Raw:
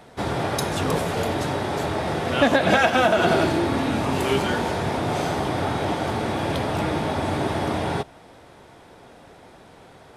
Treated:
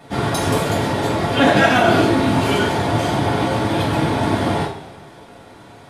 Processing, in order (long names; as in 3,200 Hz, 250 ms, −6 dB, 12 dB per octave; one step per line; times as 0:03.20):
time stretch by overlap-add 0.58×, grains 95 ms
coupled-rooms reverb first 0.34 s, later 1.7 s, from −17 dB, DRR −6.5 dB
level −1 dB